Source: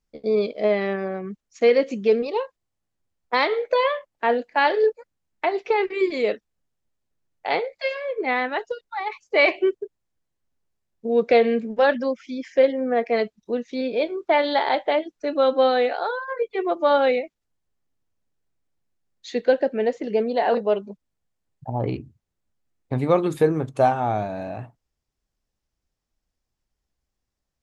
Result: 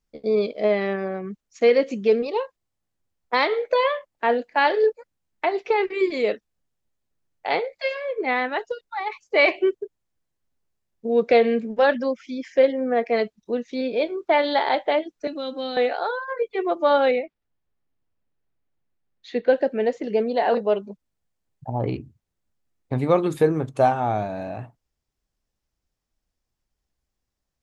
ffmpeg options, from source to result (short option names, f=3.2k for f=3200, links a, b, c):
-filter_complex "[0:a]asettb=1/sr,asplit=3[a][b][c];[a]atrim=end=15.274[d];[b]atrim=start=15.27:end=15.77,asetpts=PTS-STARTPTS,afade=t=in:d=0.004:c=qsin,afade=t=out:st=0.496:d=0.004:c=qsin,acrossover=split=260|3000[e][f][g];[f]acompressor=threshold=-38dB:ratio=2.5:attack=3.2:release=140:knee=2.83:detection=peak[h];[e][h][g]amix=inputs=3:normalize=0[i];[c]atrim=start=15.766[j];[d][i]acrossfade=d=0.004:c1=hsin:c2=qsin[k];[k][j]acrossfade=d=0.004:c1=qsin:c2=hsin,asettb=1/sr,asplit=3[l][m][n];[l]atrim=end=17.114[o];[m]atrim=start=17.11:end=19.53,asetpts=PTS-STARTPTS,afade=t=in:d=0.004:c=qsin,afade=t=out:st=2.416:d=0.004:c=qsin,lowpass=3.3k[p];[n]atrim=start=19.526[q];[o][p]acrossfade=d=0.004:c1=hsin:c2=qsin[r];[r][q]acrossfade=d=0.004:c1=qsin:c2=hsin"